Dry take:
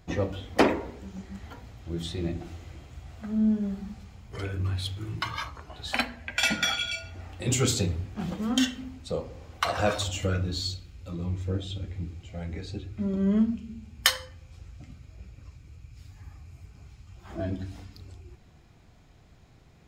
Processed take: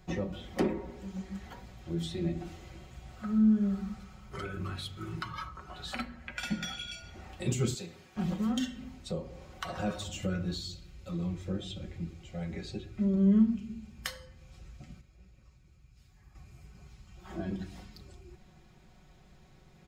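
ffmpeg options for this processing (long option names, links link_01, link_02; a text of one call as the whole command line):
ffmpeg -i in.wav -filter_complex "[0:a]asettb=1/sr,asplit=3[link_01][link_02][link_03];[link_01]atrim=end=3.164[link_04];[link_02]atrim=start=3.16:end=6.49,asetpts=PTS-STARTPTS,afade=type=in:duration=0.004:curve=qsin,afade=type=out:start_time=3.326:duration=0.004:curve=qsin,equalizer=frequency=1300:width=5.4:gain=11[link_05];[link_03]atrim=start=6.486[link_06];[link_04][link_05]acrossfade=duration=0.004:curve1=hsin:curve2=qsin[link_07];[link_07][link_06]acrossfade=duration=0.004:curve1=qsin:curve2=hsin,asettb=1/sr,asplit=3[link_08][link_09][link_10];[link_08]atrim=end=7.744[link_11];[link_09]atrim=start=7.74:end=8.16,asetpts=PTS-STARTPTS,afade=type=in:duration=0.004:curve=qsin,afade=type=out:start_time=0.416:duration=0.004:curve=qsin,highpass=frequency=1000:poles=1[link_12];[link_10]atrim=start=8.156[link_13];[link_11][link_12]acrossfade=duration=0.004:curve1=hsin:curve2=qsin[link_14];[link_14][link_13]acrossfade=duration=0.004:curve1=qsin:curve2=hsin,asplit=3[link_15][link_16][link_17];[link_15]atrim=end=15.012[link_18];[link_16]atrim=start=15.008:end=16.352,asetpts=PTS-STARTPTS,volume=-8dB[link_19];[link_17]atrim=start=16.348[link_20];[link_18][link_19]acrossfade=duration=0.004:curve1=hsin:curve2=hsin[link_21];[link_21][link_20]acrossfade=duration=0.004:curve1=hsin:curve2=hsin,aecho=1:1:5.4:0.64,acrossover=split=340[link_22][link_23];[link_23]acompressor=threshold=-38dB:ratio=3[link_24];[link_22][link_24]amix=inputs=2:normalize=0,volume=-2.5dB" out.wav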